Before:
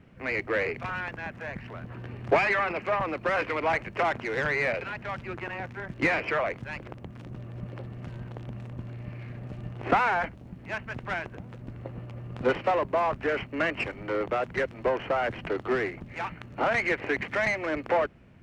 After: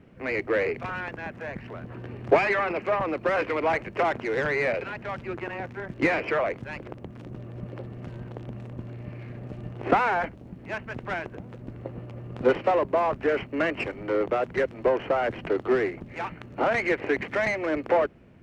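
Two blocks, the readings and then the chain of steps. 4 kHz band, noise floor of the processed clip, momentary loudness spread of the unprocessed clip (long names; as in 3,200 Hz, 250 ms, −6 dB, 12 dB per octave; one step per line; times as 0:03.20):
−1.0 dB, −45 dBFS, 15 LU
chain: parametric band 390 Hz +6 dB 1.7 octaves
level −1 dB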